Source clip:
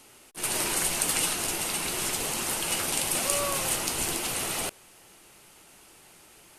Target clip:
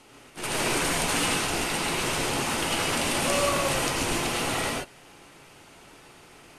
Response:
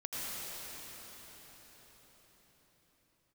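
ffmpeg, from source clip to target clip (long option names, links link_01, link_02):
-filter_complex "[0:a]acontrast=36,aemphasis=mode=reproduction:type=50fm[link_01];[1:a]atrim=start_sample=2205,afade=type=out:start_time=0.2:duration=0.01,atrim=end_sample=9261[link_02];[link_01][link_02]afir=irnorm=-1:irlink=0,volume=2.5dB"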